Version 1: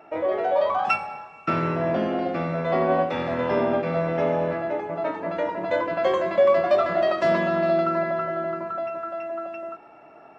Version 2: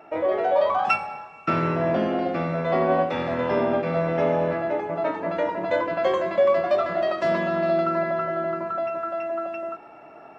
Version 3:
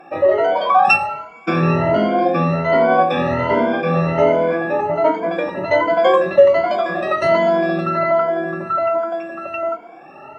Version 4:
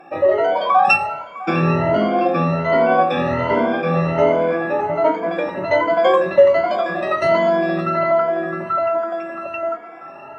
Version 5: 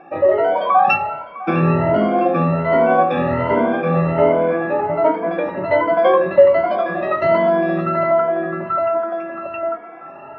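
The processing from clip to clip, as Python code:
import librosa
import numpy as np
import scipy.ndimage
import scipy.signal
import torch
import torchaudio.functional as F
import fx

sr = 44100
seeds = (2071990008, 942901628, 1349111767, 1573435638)

y1 = fx.rider(x, sr, range_db=3, speed_s=2.0)
y2 = fx.spec_ripple(y1, sr, per_octave=1.8, drift_hz=1.3, depth_db=24)
y2 = F.gain(torch.from_numpy(y2), 2.0).numpy()
y3 = fx.echo_banded(y2, sr, ms=655, feedback_pct=67, hz=1400.0, wet_db=-16.0)
y3 = F.gain(torch.from_numpy(y3), -1.0).numpy()
y4 = fx.air_absorb(y3, sr, metres=340.0)
y4 = F.gain(torch.from_numpy(y4), 2.0).numpy()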